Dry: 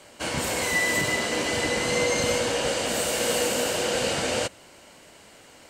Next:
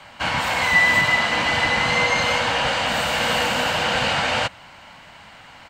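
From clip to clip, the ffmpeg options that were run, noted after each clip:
-filter_complex "[0:a]firequalizer=gain_entry='entry(160,0);entry(380,-15);entry(820,3);entry(3700,-2);entry(5600,-10);entry(10000,-19);entry(15000,-11)':delay=0.05:min_phase=1,acrossover=split=310|5900[a][b][c];[a]alimiter=level_in=7.5dB:limit=-24dB:level=0:latency=1:release=481,volume=-7.5dB[d];[d][b][c]amix=inputs=3:normalize=0,volume=8dB"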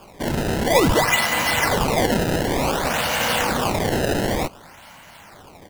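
-af "acrusher=samples=22:mix=1:aa=0.000001:lfo=1:lforange=35.2:lforate=0.55"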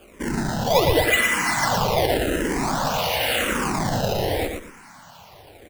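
-filter_complex "[0:a]aecho=1:1:116|232|348|464:0.562|0.157|0.0441|0.0123,asplit=2[a][b];[b]afreqshift=-0.89[c];[a][c]amix=inputs=2:normalize=1"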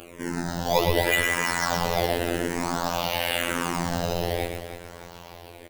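-af "aecho=1:1:309|618|927|1236:0.282|0.113|0.0451|0.018,acompressor=mode=upward:threshold=-32dB:ratio=2.5,afftfilt=real='hypot(re,im)*cos(PI*b)':imag='0':win_size=2048:overlap=0.75,volume=-1dB"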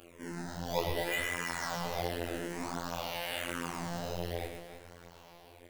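-af "flanger=delay=22.5:depth=6.5:speed=1.4,volume=-8dB"

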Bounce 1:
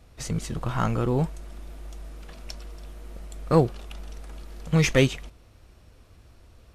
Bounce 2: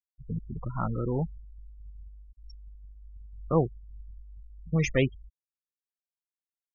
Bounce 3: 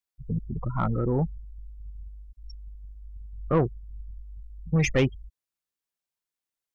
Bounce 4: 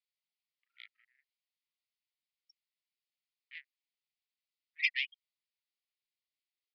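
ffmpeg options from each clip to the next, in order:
-af "afftfilt=real='re*gte(hypot(re,im),0.0891)':imag='im*gte(hypot(re,im),0.0891)':win_size=1024:overlap=0.75,volume=-5dB"
-af "asoftclip=type=tanh:threshold=-19.5dB,volume=5dB"
-af "asuperpass=centerf=3800:order=20:qfactor=0.71,aresample=11025,aresample=44100"

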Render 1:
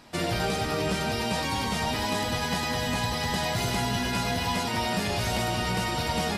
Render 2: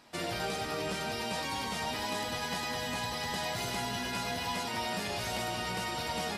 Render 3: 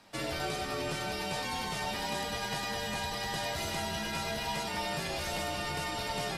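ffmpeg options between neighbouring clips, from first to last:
-af "lowshelf=f=200:g=-9,volume=-5.5dB"
-af "afreqshift=-35"

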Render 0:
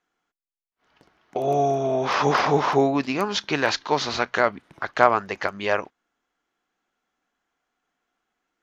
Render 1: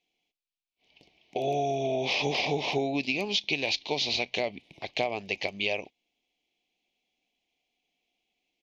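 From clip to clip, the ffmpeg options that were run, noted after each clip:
-af "firequalizer=gain_entry='entry(740,0);entry(1400,-30);entry(2300,11);entry(3900,9);entry(8300,-4)':delay=0.05:min_phase=1,acompressor=threshold=-20dB:ratio=10,volume=-4dB"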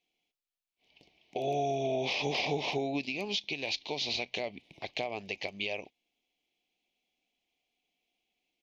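-af "alimiter=limit=-18.5dB:level=0:latency=1:release=259,volume=-2.5dB"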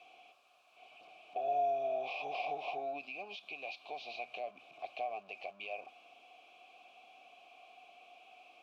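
-filter_complex "[0:a]aeval=exprs='val(0)+0.5*0.00794*sgn(val(0))':c=same,asplit=3[a][b][c];[a]bandpass=f=730:t=q:w=8,volume=0dB[d];[b]bandpass=f=1.09k:t=q:w=8,volume=-6dB[e];[c]bandpass=f=2.44k:t=q:w=8,volume=-9dB[f];[d][e][f]amix=inputs=3:normalize=0,volume=1.5dB"

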